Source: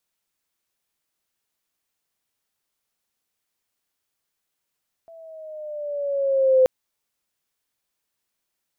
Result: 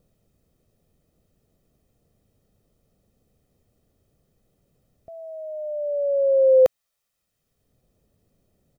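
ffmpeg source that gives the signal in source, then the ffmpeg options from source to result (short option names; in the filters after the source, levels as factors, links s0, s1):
-f lavfi -i "aevalsrc='pow(10,(-11+31*(t/1.58-1))/20)*sin(2*PI*666*1.58/(-4.5*log(2)/12)*(exp(-4.5*log(2)/12*t/1.58)-1))':d=1.58:s=44100"
-filter_complex "[0:a]aecho=1:1:1.6:0.49,acrossover=split=430[s0][s1];[s0]acompressor=mode=upward:threshold=0.00631:ratio=2.5[s2];[s2][s1]amix=inputs=2:normalize=0"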